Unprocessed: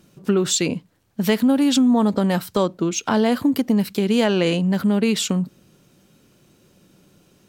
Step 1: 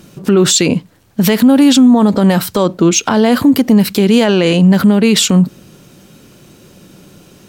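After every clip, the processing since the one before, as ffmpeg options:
-af "alimiter=level_in=15dB:limit=-1dB:release=50:level=0:latency=1,volume=-1dB"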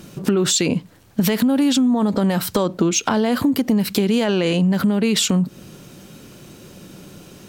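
-af "acompressor=threshold=-15dB:ratio=6"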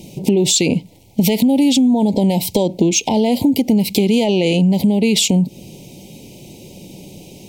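-af "asuperstop=centerf=1400:order=12:qfactor=1.2,volume=3.5dB"

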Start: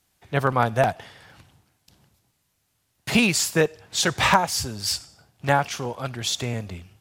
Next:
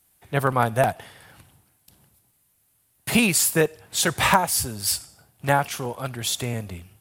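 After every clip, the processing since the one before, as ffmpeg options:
-af "highshelf=f=7.9k:t=q:w=1.5:g=8.5"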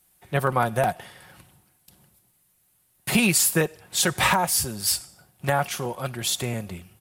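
-af "aecho=1:1:5.5:0.35,alimiter=limit=-8.5dB:level=0:latency=1:release=112"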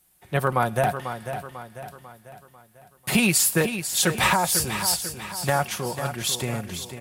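-af "aecho=1:1:495|990|1485|1980|2475:0.335|0.154|0.0709|0.0326|0.015"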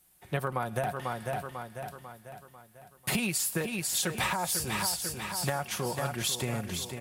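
-af "acompressor=threshold=-25dB:ratio=10,volume=-1.5dB"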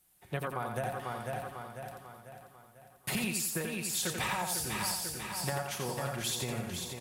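-af "aecho=1:1:87|174|261|348:0.562|0.191|0.065|0.0221,volume=-4.5dB"

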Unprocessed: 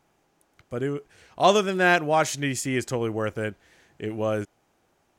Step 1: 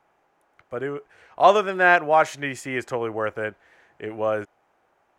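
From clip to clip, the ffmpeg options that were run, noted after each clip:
-filter_complex "[0:a]acrossover=split=470 2300:gain=0.224 1 0.178[a][b][c];[a][b][c]amix=inputs=3:normalize=0,volume=5.5dB"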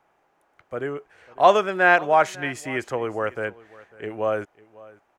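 -af "aecho=1:1:547:0.0841"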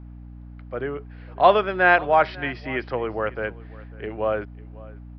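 -af "aeval=exprs='val(0)+0.0112*(sin(2*PI*60*n/s)+sin(2*PI*2*60*n/s)/2+sin(2*PI*3*60*n/s)/3+sin(2*PI*4*60*n/s)/4+sin(2*PI*5*60*n/s)/5)':c=same,aresample=11025,aresample=44100"

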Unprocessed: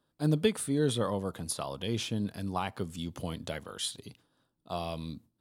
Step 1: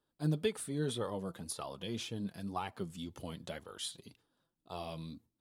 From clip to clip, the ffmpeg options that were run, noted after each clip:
-af "flanger=delay=2.2:depth=3.8:regen=36:speed=1.9:shape=sinusoidal,volume=-2.5dB"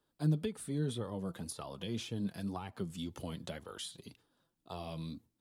-filter_complex "[0:a]acrossover=split=280[a][b];[b]acompressor=threshold=-44dB:ratio=6[c];[a][c]amix=inputs=2:normalize=0,volume=3dB"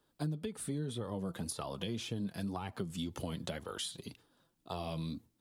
-af "acompressor=threshold=-39dB:ratio=6,volume=5dB"

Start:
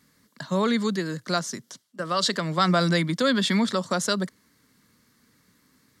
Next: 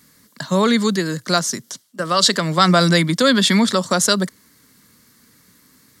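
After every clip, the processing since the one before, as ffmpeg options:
-af "highshelf=f=6.3k:g=8.5,volume=7dB"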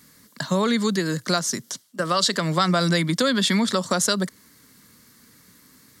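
-af "acompressor=threshold=-20dB:ratio=2.5"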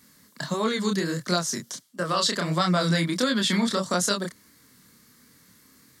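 -af "flanger=delay=22.5:depth=8:speed=1.5"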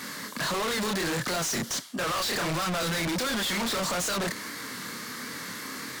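-filter_complex "[0:a]asplit=2[a][b];[b]highpass=f=720:p=1,volume=33dB,asoftclip=type=tanh:threshold=-9.5dB[c];[a][c]amix=inputs=2:normalize=0,lowpass=f=2.3k:p=1,volume=-6dB,volume=28dB,asoftclip=hard,volume=-28dB"

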